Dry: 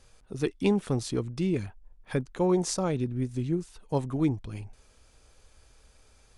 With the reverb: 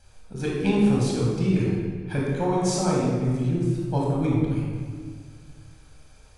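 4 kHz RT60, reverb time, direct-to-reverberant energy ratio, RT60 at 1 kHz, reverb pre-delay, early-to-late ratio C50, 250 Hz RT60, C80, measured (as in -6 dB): 1.2 s, 1.8 s, -4.5 dB, 1.7 s, 24 ms, -1.5 dB, 2.2 s, 1.0 dB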